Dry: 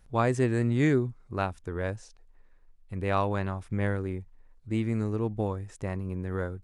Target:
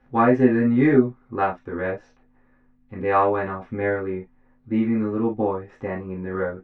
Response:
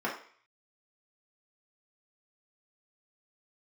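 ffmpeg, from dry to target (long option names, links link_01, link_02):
-filter_complex "[0:a]aeval=exprs='val(0)+0.000708*(sin(2*PI*50*n/s)+sin(2*PI*2*50*n/s)/2+sin(2*PI*3*50*n/s)/3+sin(2*PI*4*50*n/s)/4+sin(2*PI*5*50*n/s)/5)':channel_layout=same,lowpass=3200,aeval=exprs='0.224*(cos(1*acos(clip(val(0)/0.224,-1,1)))-cos(1*PI/2))+0.0282*(cos(2*acos(clip(val(0)/0.224,-1,1)))-cos(2*PI/2))':channel_layout=same[link_01];[1:a]atrim=start_sample=2205,atrim=end_sample=3087,asetrate=48510,aresample=44100[link_02];[link_01][link_02]afir=irnorm=-1:irlink=0"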